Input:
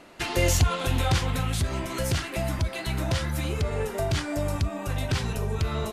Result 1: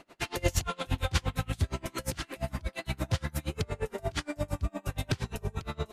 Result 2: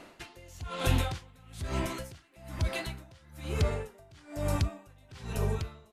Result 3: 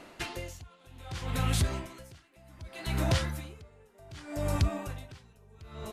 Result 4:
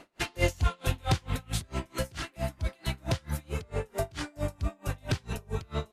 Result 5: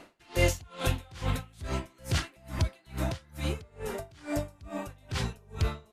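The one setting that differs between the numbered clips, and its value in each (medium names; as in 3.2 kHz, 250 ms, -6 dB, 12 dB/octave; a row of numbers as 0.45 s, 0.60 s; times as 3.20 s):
logarithmic tremolo, rate: 8.6 Hz, 1.1 Hz, 0.65 Hz, 4.5 Hz, 2.3 Hz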